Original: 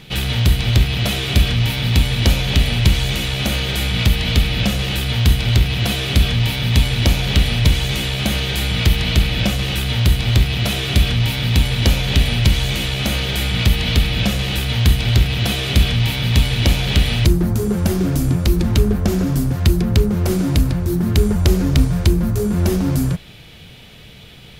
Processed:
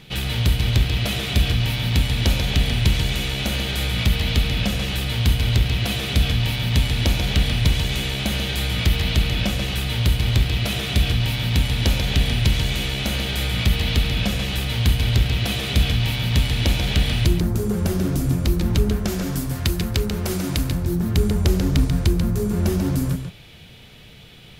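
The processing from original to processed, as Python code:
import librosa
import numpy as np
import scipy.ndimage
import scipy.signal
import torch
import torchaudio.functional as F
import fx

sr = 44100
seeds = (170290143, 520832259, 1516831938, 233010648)

y = fx.tilt_shelf(x, sr, db=-4.0, hz=770.0, at=(18.9, 20.69))
y = y + 10.0 ** (-7.5 / 20.0) * np.pad(y, (int(139 * sr / 1000.0), 0))[:len(y)]
y = y * 10.0 ** (-4.5 / 20.0)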